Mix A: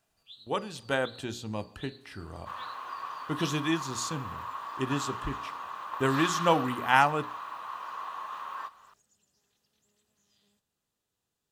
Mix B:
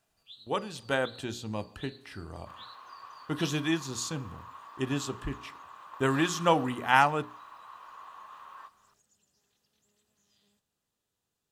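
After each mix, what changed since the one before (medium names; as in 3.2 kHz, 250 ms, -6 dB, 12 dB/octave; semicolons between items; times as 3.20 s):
second sound -9.5 dB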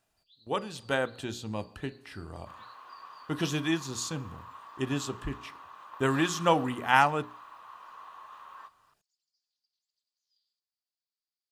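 first sound: add band-pass filter 4.7 kHz, Q 8.4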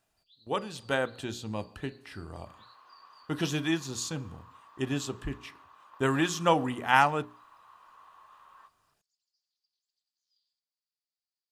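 second sound -7.5 dB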